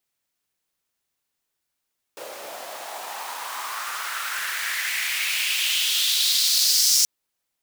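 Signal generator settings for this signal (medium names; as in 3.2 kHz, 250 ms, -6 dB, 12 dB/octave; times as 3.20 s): swept filtered noise pink, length 4.88 s highpass, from 510 Hz, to 5.7 kHz, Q 3.3, exponential, gain ramp +22.5 dB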